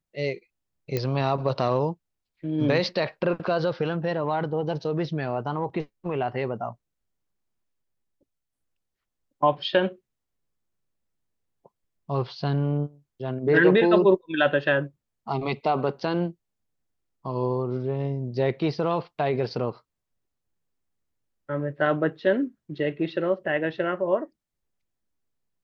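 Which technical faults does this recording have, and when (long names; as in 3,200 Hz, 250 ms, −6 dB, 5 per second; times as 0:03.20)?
0:00.97: click −13 dBFS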